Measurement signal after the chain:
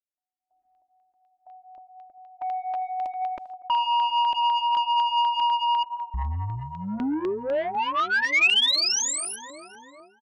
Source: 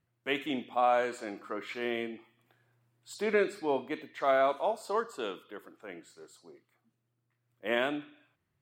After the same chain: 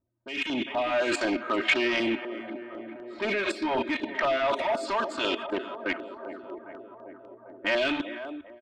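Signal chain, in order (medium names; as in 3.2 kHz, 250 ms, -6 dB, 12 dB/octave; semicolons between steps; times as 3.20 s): in parallel at +1 dB: peak limiter -26 dBFS; on the sum: level-controlled noise filter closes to 600 Hz, open at -25.5 dBFS; level held to a coarse grid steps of 19 dB; comb 3.2 ms, depth 87%; on a send: tape echo 400 ms, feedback 83%, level -12.5 dB, low-pass 1.6 kHz; on the sum: saturation -33.5 dBFS; dynamic bell 2.7 kHz, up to +6 dB, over -59 dBFS, Q 2.6; level rider gain up to 16 dB; LFO notch saw down 4 Hz 220–2700 Hz; low-pass 6.3 kHz 12 dB/octave; bass shelf 450 Hz -6 dB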